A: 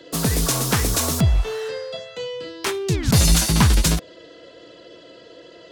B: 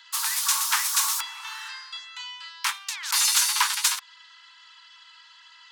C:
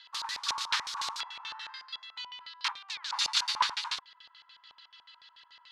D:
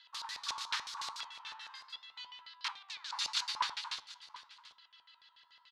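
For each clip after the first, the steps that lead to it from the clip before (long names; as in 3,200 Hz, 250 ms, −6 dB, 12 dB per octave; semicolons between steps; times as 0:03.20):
Butterworth high-pass 870 Hz 96 dB per octave
auto-filter low-pass square 6.9 Hz 920–4,100 Hz; level −7.5 dB
single-tap delay 737 ms −17 dB; flanger 0.83 Hz, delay 6.3 ms, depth 5.5 ms, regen −87%; level −2 dB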